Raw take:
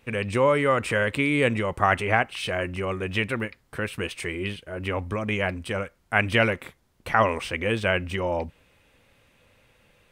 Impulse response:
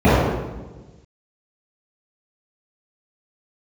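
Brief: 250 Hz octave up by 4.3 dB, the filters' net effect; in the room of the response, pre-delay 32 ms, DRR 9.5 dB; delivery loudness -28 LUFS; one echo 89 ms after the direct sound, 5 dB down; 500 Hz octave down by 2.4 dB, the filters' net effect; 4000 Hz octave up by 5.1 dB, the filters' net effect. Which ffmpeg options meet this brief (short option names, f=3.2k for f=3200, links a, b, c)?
-filter_complex "[0:a]equalizer=f=250:t=o:g=6.5,equalizer=f=500:t=o:g=-4.5,equalizer=f=4k:t=o:g=8,aecho=1:1:89:0.562,asplit=2[a][b];[1:a]atrim=start_sample=2205,adelay=32[c];[b][c]afir=irnorm=-1:irlink=0,volume=-38.5dB[d];[a][d]amix=inputs=2:normalize=0,volume=-6.5dB"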